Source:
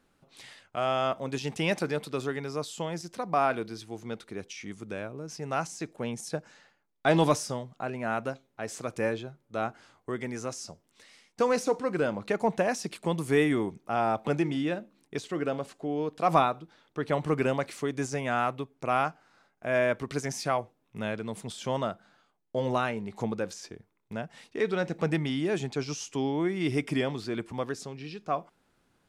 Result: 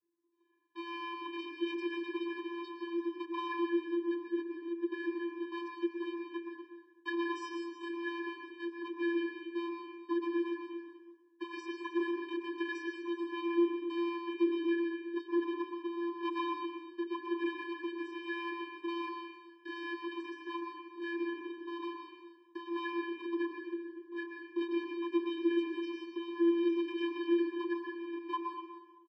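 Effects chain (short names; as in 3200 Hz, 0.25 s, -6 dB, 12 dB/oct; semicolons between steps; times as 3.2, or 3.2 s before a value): low-pass opened by the level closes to 700 Hz, open at -22 dBFS; low shelf 150 Hz +8 dB; notches 50/100/150 Hz; comb 6.4 ms, depth 100%; sample leveller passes 3; compressor, threshold -19 dBFS, peak gain reduction 11.5 dB; overloaded stage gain 20.5 dB; fixed phaser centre 1400 Hz, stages 8; vocoder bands 32, square 341 Hz; echo 0.246 s -13 dB; on a send at -3 dB: reverb RT60 1.2 s, pre-delay 0.106 s; on the sum: gain -8 dB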